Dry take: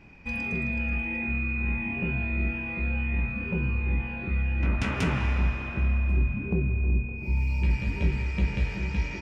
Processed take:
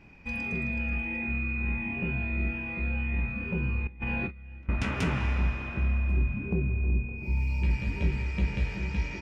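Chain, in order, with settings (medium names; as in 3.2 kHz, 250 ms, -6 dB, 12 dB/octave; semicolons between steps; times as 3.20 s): 3.87–4.69 s: compressor with a negative ratio -33 dBFS, ratio -0.5; trim -2 dB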